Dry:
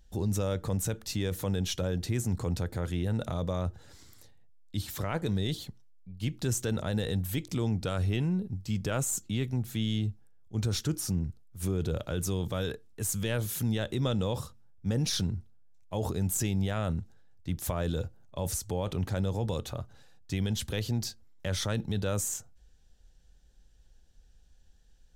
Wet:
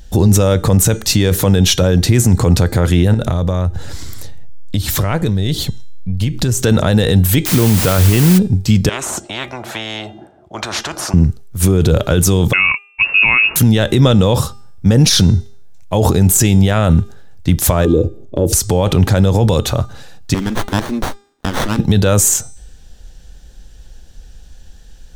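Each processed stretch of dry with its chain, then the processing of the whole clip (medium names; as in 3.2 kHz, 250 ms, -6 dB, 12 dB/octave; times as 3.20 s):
3.14–6.62 s: bass shelf 100 Hz +10.5 dB + compression, threshold -34 dBFS
7.45–8.37 s: Savitzky-Golay filter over 25 samples + added noise white -40 dBFS
8.89–11.14 s: two resonant band-passes 480 Hz, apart 0.86 oct + spectrum-flattening compressor 10:1
12.53–13.56 s: gate -45 dBFS, range -22 dB + frequency inversion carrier 2.7 kHz
17.85–18.53 s: FFT filter 190 Hz 0 dB, 330 Hz +14 dB, 480 Hz +7 dB, 1.5 kHz -27 dB, 2.8 kHz -11 dB + compression 3:1, threshold -31 dBFS
20.34–21.79 s: high-pass 280 Hz 24 dB/octave + high-order bell 680 Hz -14.5 dB + sliding maximum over 17 samples
whole clip: de-hum 402.4 Hz, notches 22; loudness maximiser +23 dB; trim -1 dB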